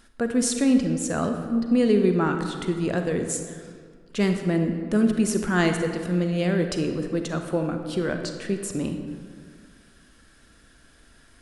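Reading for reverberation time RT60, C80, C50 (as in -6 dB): 1.9 s, 7.5 dB, 6.0 dB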